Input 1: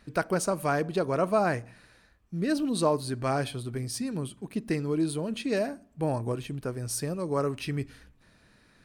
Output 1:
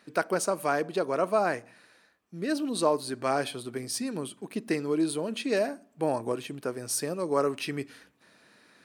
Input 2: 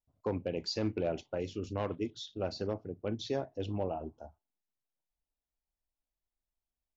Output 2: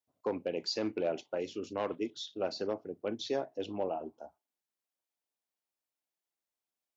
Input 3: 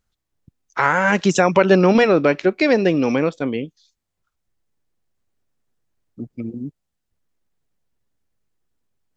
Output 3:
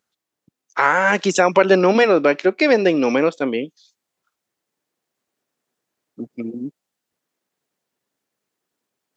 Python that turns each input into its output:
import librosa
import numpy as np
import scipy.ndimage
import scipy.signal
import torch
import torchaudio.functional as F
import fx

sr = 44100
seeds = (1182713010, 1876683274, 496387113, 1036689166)

p1 = fx.rider(x, sr, range_db=10, speed_s=2.0)
p2 = x + (p1 * librosa.db_to_amplitude(2.0))
p3 = scipy.signal.sosfilt(scipy.signal.butter(2, 270.0, 'highpass', fs=sr, output='sos'), p2)
y = p3 * librosa.db_to_amplitude(-5.5)